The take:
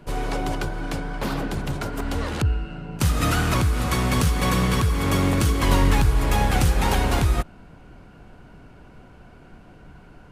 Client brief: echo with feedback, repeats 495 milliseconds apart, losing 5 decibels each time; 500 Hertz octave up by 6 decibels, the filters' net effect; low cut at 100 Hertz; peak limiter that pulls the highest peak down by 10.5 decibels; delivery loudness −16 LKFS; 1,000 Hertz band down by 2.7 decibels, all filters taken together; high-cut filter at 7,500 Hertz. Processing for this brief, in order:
high-pass filter 100 Hz
low-pass filter 7,500 Hz
parametric band 500 Hz +9 dB
parametric band 1,000 Hz −7 dB
brickwall limiter −19 dBFS
repeating echo 495 ms, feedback 56%, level −5 dB
level +11 dB

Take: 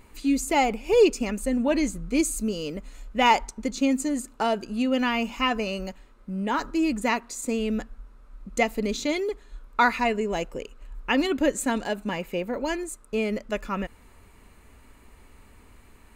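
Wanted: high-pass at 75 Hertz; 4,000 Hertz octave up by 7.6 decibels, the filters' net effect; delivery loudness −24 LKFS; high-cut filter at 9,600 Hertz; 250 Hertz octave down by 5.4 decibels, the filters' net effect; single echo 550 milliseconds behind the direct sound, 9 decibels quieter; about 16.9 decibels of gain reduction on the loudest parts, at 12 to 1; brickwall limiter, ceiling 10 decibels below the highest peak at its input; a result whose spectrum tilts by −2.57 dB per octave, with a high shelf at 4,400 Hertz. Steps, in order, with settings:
high-pass filter 75 Hz
low-pass filter 9,600 Hz
parametric band 250 Hz −6.5 dB
parametric band 4,000 Hz +8.5 dB
high-shelf EQ 4,400 Hz +5.5 dB
downward compressor 12 to 1, threshold −31 dBFS
brickwall limiter −26 dBFS
single-tap delay 550 ms −9 dB
level +12.5 dB

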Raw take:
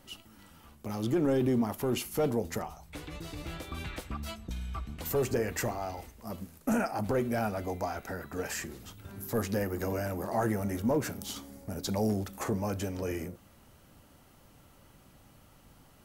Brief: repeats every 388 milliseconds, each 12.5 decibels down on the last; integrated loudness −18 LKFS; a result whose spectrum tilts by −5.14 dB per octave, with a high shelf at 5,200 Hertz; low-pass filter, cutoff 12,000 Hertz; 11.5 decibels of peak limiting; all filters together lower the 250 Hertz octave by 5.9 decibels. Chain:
low-pass filter 12,000 Hz
parametric band 250 Hz −7.5 dB
high-shelf EQ 5,200 Hz −4.5 dB
brickwall limiter −32 dBFS
repeating echo 388 ms, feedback 24%, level −12.5 dB
level +23.5 dB

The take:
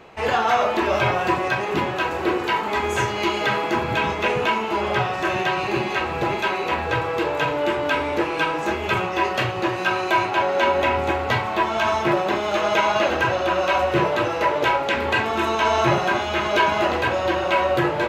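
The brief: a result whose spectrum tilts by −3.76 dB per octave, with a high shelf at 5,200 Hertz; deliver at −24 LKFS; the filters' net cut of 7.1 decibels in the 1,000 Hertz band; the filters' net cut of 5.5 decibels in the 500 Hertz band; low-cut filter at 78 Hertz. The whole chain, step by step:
high-pass filter 78 Hz
parametric band 500 Hz −5 dB
parametric band 1,000 Hz −7.5 dB
high-shelf EQ 5,200 Hz +7.5 dB
level +0.5 dB

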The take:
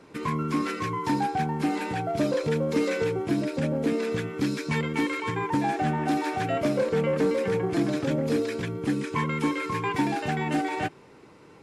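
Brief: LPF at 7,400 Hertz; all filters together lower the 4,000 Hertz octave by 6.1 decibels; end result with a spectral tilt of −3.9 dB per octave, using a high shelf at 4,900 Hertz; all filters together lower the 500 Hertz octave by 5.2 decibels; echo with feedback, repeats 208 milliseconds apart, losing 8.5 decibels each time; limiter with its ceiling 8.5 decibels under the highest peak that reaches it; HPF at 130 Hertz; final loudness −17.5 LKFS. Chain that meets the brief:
high-pass filter 130 Hz
low-pass filter 7,400 Hz
parametric band 500 Hz −6 dB
parametric band 4,000 Hz −6 dB
high-shelf EQ 4,900 Hz −3.5 dB
brickwall limiter −24.5 dBFS
repeating echo 208 ms, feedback 38%, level −8.5 dB
level +15 dB

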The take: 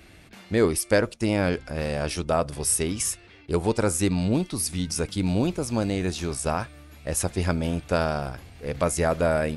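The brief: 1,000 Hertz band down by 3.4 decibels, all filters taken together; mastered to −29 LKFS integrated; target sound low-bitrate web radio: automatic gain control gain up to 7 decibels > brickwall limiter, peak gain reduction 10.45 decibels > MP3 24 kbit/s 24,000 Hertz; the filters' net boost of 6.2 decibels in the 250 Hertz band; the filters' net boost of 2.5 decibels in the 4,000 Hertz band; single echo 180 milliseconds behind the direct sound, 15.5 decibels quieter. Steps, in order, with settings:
parametric band 250 Hz +8.5 dB
parametric band 1,000 Hz −6 dB
parametric band 4,000 Hz +3.5 dB
single-tap delay 180 ms −15.5 dB
automatic gain control gain up to 7 dB
brickwall limiter −16.5 dBFS
level −1 dB
MP3 24 kbit/s 24,000 Hz

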